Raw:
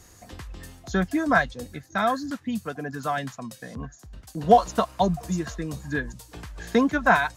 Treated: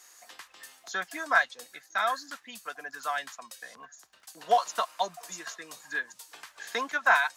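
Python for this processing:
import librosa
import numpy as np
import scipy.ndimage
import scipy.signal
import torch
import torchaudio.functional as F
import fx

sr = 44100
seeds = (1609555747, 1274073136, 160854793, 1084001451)

y = scipy.signal.sosfilt(scipy.signal.butter(2, 1000.0, 'highpass', fs=sr, output='sos'), x)
y = fx.dmg_crackle(y, sr, seeds[0], per_s=48.0, level_db=-55.0)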